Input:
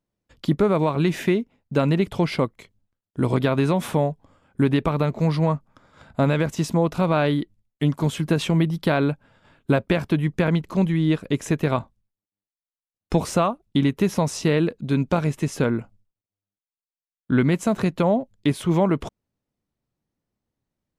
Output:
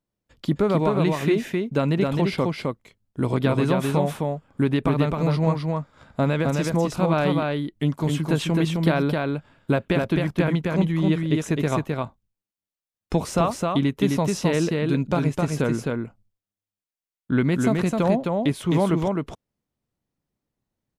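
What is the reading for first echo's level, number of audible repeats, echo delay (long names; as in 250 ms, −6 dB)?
−3.0 dB, 1, 261 ms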